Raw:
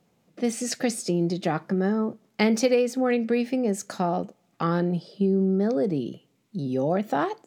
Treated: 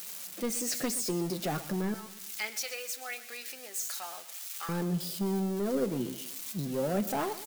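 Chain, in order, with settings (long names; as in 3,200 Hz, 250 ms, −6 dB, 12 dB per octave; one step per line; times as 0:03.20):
spike at every zero crossing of −25 dBFS
0:01.94–0:04.69: high-pass filter 1,500 Hz 12 dB per octave
soft clipping −20.5 dBFS, distortion −14 dB
flanger 0.42 Hz, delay 4.5 ms, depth 3.8 ms, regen +54%
repeating echo 124 ms, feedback 42%, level −15.5 dB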